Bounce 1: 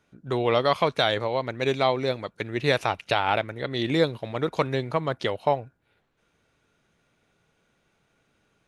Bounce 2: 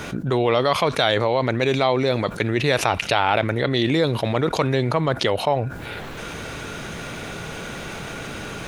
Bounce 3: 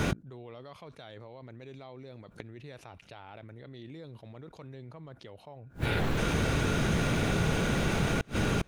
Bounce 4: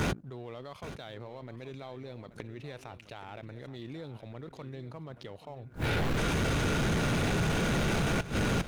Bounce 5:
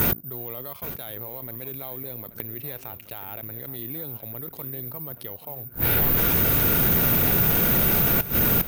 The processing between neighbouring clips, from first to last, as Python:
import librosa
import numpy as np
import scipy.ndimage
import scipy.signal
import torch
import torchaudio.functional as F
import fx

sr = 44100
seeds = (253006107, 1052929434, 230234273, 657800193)

y1 = fx.env_flatten(x, sr, amount_pct=70)
y2 = fx.low_shelf(y1, sr, hz=340.0, db=9.5)
y2 = fx.gate_flip(y2, sr, shuts_db=-16.0, range_db=-31)
y3 = fx.leveller(y2, sr, passes=1)
y3 = 10.0 ** (-24.5 / 20.0) * np.tanh(y3 / 10.0 ** (-24.5 / 20.0))
y3 = y3 + 10.0 ** (-14.0 / 20.0) * np.pad(y3, (int(828 * sr / 1000.0), 0))[:len(y3)]
y4 = (np.kron(y3[::3], np.eye(3)[0]) * 3)[:len(y3)]
y4 = y4 * librosa.db_to_amplitude(3.5)